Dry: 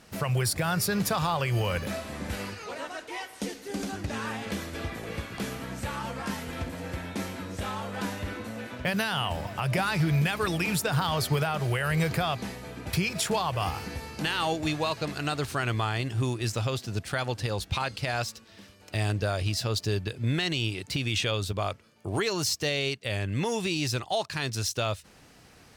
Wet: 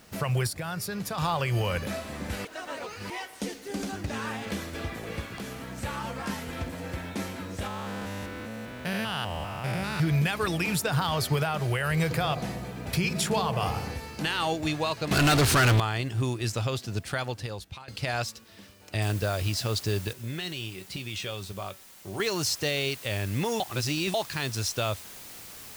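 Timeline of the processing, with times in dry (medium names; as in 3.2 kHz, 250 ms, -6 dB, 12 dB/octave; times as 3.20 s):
0.47–1.18 s: gain -6.5 dB
2.45–3.10 s: reverse
5.36–5.78 s: compression 2:1, threshold -36 dBFS
7.67–10.00 s: spectrogram pixelated in time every 200 ms
12.04–13.94 s: feedback echo behind a low-pass 65 ms, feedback 77%, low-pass 650 Hz, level -7 dB
15.11–15.80 s: waveshaping leveller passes 5
17.10–17.88 s: fade out linear, to -22 dB
19.02 s: noise floor step -63 dB -45 dB
20.13–22.20 s: feedback comb 190 Hz, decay 0.16 s, mix 70%
23.60–24.14 s: reverse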